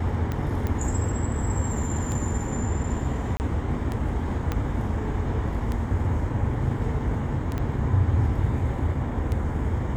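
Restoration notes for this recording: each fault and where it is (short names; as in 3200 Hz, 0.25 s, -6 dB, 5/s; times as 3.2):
tick 33 1/3 rpm -17 dBFS
0.67 pop -17 dBFS
3.37–3.4 gap 29 ms
4.52 pop -13 dBFS
7.58 pop -17 dBFS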